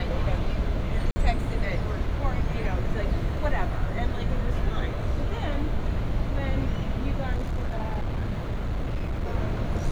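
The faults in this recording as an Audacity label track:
1.110000	1.160000	dropout 50 ms
7.340000	9.320000	clipped -23.5 dBFS

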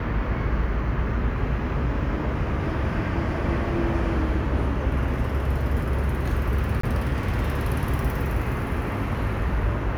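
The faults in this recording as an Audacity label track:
6.810000	6.830000	dropout 24 ms

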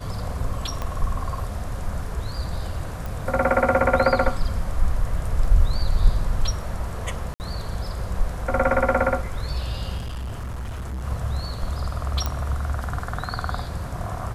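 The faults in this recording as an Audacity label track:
0.820000	0.820000	pop -15 dBFS
3.060000	3.060000	pop
7.340000	7.400000	dropout 59 ms
9.970000	11.050000	clipped -27.5 dBFS
12.260000	12.260000	pop -11 dBFS

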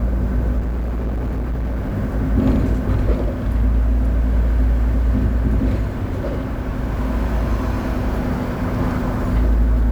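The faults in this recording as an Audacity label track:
0.580000	1.970000	clipped -19 dBFS

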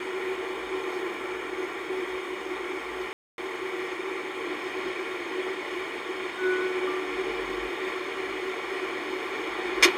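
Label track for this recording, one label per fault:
3.130000	3.380000	dropout 251 ms

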